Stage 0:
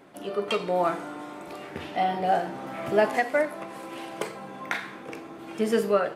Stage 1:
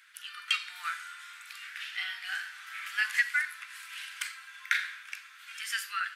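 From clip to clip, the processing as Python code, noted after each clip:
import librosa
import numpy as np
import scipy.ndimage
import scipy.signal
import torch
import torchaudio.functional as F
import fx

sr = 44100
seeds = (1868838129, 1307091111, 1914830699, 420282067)

y = scipy.signal.sosfilt(scipy.signal.ellip(4, 1.0, 60, 1500.0, 'highpass', fs=sr, output='sos'), x)
y = y * librosa.db_to_amplitude(4.0)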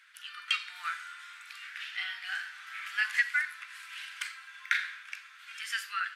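y = fx.high_shelf(x, sr, hz=8400.0, db=-10.0)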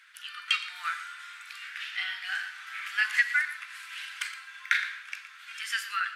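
y = x + 10.0 ** (-14.0 / 20.0) * np.pad(x, (int(117 * sr / 1000.0), 0))[:len(x)]
y = y * librosa.db_to_amplitude(3.0)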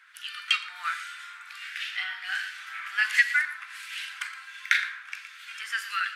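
y = fx.harmonic_tremolo(x, sr, hz=1.4, depth_pct=70, crossover_hz=1600.0)
y = y * librosa.db_to_amplitude(5.5)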